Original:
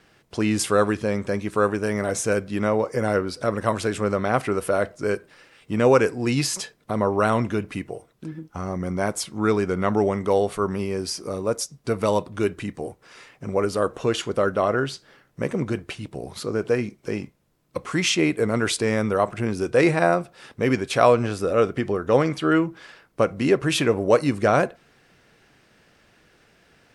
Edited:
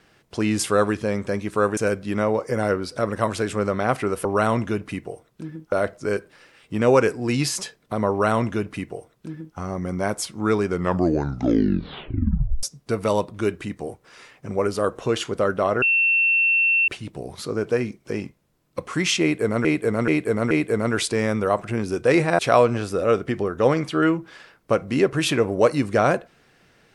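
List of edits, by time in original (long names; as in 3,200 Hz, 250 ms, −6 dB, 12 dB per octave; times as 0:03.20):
0:01.77–0:02.22: remove
0:07.08–0:08.55: duplicate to 0:04.70
0:09.69: tape stop 1.92 s
0:14.80–0:15.86: beep over 2,700 Hz −15.5 dBFS
0:18.20–0:18.63: repeat, 4 plays
0:20.08–0:20.88: remove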